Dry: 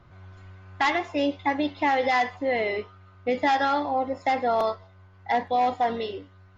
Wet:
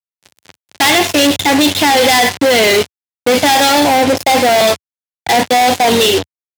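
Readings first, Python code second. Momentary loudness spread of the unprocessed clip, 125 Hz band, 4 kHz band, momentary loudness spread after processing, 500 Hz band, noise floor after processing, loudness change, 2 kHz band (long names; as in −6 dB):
11 LU, +16.0 dB, +24.0 dB, 6 LU, +14.0 dB, below −85 dBFS, +14.5 dB, +14.5 dB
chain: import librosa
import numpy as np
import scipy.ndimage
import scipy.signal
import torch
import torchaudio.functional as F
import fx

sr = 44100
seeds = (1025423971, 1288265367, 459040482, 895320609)

y = fx.high_shelf_res(x, sr, hz=2400.0, db=8.0, q=1.5)
y = fx.power_curve(y, sr, exponent=1.4)
y = fx.fuzz(y, sr, gain_db=51.0, gate_db=-50.0)
y = scipy.signal.sosfilt(scipy.signal.butter(4, 82.0, 'highpass', fs=sr, output='sos'), y)
y = fx.peak_eq(y, sr, hz=1200.0, db=-5.5, octaves=0.47)
y = y * librosa.db_to_amplitude(5.0)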